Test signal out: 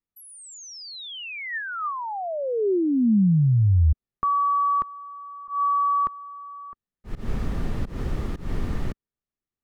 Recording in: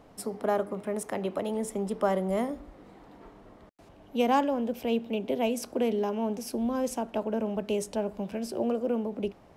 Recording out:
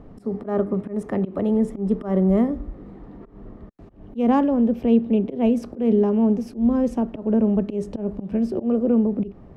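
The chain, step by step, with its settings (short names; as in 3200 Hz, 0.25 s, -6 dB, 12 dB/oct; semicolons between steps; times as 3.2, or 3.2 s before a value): RIAA curve playback; auto swell 0.149 s; small resonant body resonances 210/380/1200/1800 Hz, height 6 dB, ringing for 20 ms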